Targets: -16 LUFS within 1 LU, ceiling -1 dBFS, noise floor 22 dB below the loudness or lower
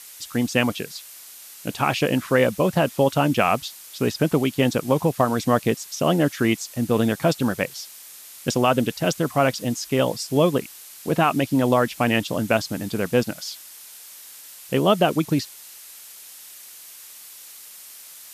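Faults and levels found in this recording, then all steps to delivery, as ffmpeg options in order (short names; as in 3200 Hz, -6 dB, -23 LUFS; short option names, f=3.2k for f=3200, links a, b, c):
noise floor -43 dBFS; noise floor target -44 dBFS; loudness -22.0 LUFS; peak -5.0 dBFS; loudness target -16.0 LUFS
-> -af "afftdn=nr=6:nf=-43"
-af "volume=6dB,alimiter=limit=-1dB:level=0:latency=1"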